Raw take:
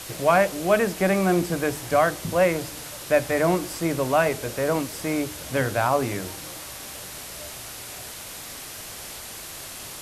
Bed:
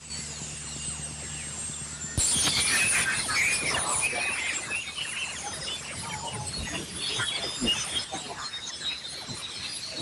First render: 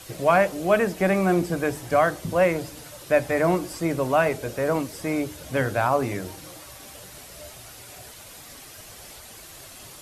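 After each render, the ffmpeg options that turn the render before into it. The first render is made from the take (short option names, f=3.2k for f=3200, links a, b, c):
-af "afftdn=nr=8:nf=-38"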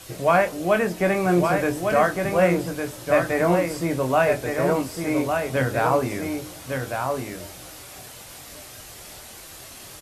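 -filter_complex "[0:a]asplit=2[a][b];[b]adelay=23,volume=-7dB[c];[a][c]amix=inputs=2:normalize=0,asplit=2[d][e];[e]aecho=0:1:1156:0.562[f];[d][f]amix=inputs=2:normalize=0"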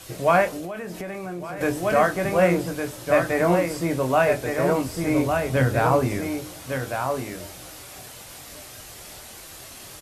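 -filter_complex "[0:a]asettb=1/sr,asplit=3[a][b][c];[a]atrim=end=0.564[d];[b]atrim=start=0.56:end=1.61,asetpts=PTS-STARTPTS,afade=t=in:d=0.004:c=qsin,afade=t=out:st=1.046:d=0.004:c=qsin,acompressor=threshold=-28dB:ratio=20:attack=3.2:release=140:knee=1:detection=peak[e];[c]atrim=start=1.606[f];[d][e]acrossfade=d=0.004:c1=hsin:c2=qsin[g];[g][f]acrossfade=d=0.004:c1=qsin:c2=hsin,asettb=1/sr,asplit=3[h][i][j];[h]atrim=end=4.844[k];[i]atrim=start=4.84:end=6.21,asetpts=PTS-STARTPTS,afade=t=in:d=0.004:c=qsin,afade=t=out:st=1.366:d=0.004:c=qsin,lowshelf=f=140:g=9.5[l];[j]atrim=start=6.206[m];[k][l]acrossfade=d=0.004:c1=hsin:c2=qsin[n];[n][m]acrossfade=d=0.004:c1=qsin:c2=hsin"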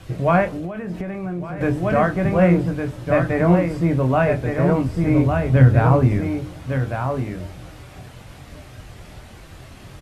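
-af "lowpass=12k,bass=f=250:g=12,treble=f=4k:g=-13"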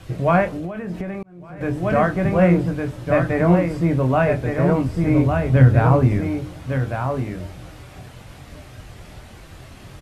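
-filter_complex "[0:a]asplit=2[a][b];[a]atrim=end=1.23,asetpts=PTS-STARTPTS,afade=t=out:st=1.226:d=0.004:c=hsin[c];[b]atrim=start=1.23,asetpts=PTS-STARTPTS,afade=t=in:d=0.67[d];[c][d]concat=n=2:v=0:a=1"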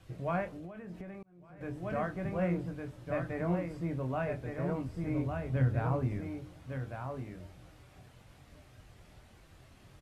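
-af "volume=-16.5dB"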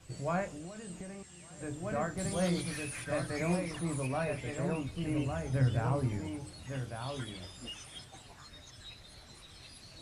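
-filter_complex "[1:a]volume=-18.5dB[a];[0:a][a]amix=inputs=2:normalize=0"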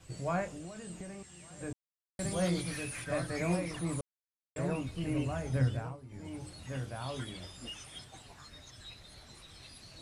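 -filter_complex "[0:a]asplit=7[a][b][c][d][e][f][g];[a]atrim=end=1.73,asetpts=PTS-STARTPTS,afade=t=out:st=1.726:d=0.004:c=hsin[h];[b]atrim=start=1.73:end=2.19,asetpts=PTS-STARTPTS,volume=0[i];[c]atrim=start=2.19:end=4.01,asetpts=PTS-STARTPTS,afade=t=in:d=0.004:c=hsin,afade=t=out:st=1.816:d=0.004:c=hsin[j];[d]atrim=start=4.01:end=4.56,asetpts=PTS-STARTPTS,volume=0[k];[e]atrim=start=4.56:end=5.97,asetpts=PTS-STARTPTS,afade=t=in:d=0.004:c=hsin,afade=t=out:st=1.05:d=0.36:silence=0.11885[l];[f]atrim=start=5.97:end=6.08,asetpts=PTS-STARTPTS,volume=-18.5dB[m];[g]atrim=start=6.08,asetpts=PTS-STARTPTS,afade=t=in:d=0.36:silence=0.11885[n];[h][i][j][k][l][m][n]concat=n=7:v=0:a=1"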